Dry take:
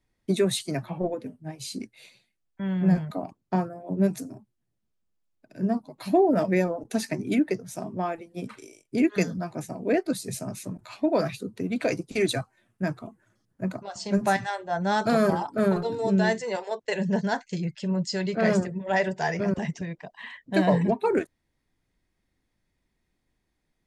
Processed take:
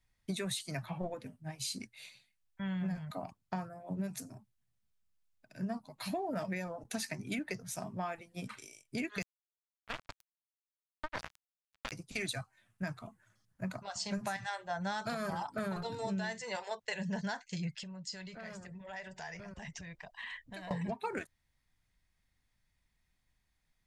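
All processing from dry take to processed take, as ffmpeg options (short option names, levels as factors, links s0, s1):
-filter_complex "[0:a]asettb=1/sr,asplit=3[s0][s1][s2];[s0]atrim=end=9.224[s3];[s1]atrim=start=9.22:end=11.92,asetpts=PTS-STARTPTS,afade=t=in:d=0.004:c=qsin,afade=t=out:st=2.696:d=0.004:c=qsin,lowshelf=f=230:g=-7,asplit=2[s4][s5];[s5]adelay=108,lowpass=f=3000:p=1,volume=0.501,asplit=2[s6][s7];[s7]adelay=108,lowpass=f=3000:p=1,volume=0.49,asplit=2[s8][s9];[s9]adelay=108,lowpass=f=3000:p=1,volume=0.49,asplit=2[s10][s11];[s11]adelay=108,lowpass=f=3000:p=1,volume=0.49,asplit=2[s12][s13];[s13]adelay=108,lowpass=f=3000:p=1,volume=0.49,asplit=2[s14][s15];[s15]adelay=108,lowpass=f=3000:p=1,volume=0.49[s16];[s4][s6][s8][s10][s12][s14][s16]amix=inputs=7:normalize=0,atrim=end_sample=119070,acrusher=bits=2:mix=0:aa=0.5[s17];[s2]atrim=start=11.916[s18];[s3][s17]acrossfade=d=0.004:c1=hsin:c2=qsin[s19];[s19][s18]acrossfade=d=0.004:c1=qsin:c2=hsin,asettb=1/sr,asplit=3[s20][s21][s22];[s20]atrim=end=17.754[s23];[s21]atrim=start=17.75:end=20.71,asetpts=PTS-STARTPTS,afade=t=in:d=0.004:c=qsin,afade=t=out:st=2.956:d=0.004:c=qsin,asubboost=boost=9:cutoff=59,acompressor=threshold=0.0126:ratio=5:attack=3.2:release=140:knee=1:detection=peak[s24];[s22]atrim=start=20.706[s25];[s23][s24]acrossfade=d=0.004:c1=hsin:c2=qsin[s26];[s26][s25]acrossfade=d=0.004:c1=qsin:c2=hsin,equalizer=f=350:t=o:w=1.7:g=-14.5,alimiter=limit=0.075:level=0:latency=1:release=360,acompressor=threshold=0.0224:ratio=6"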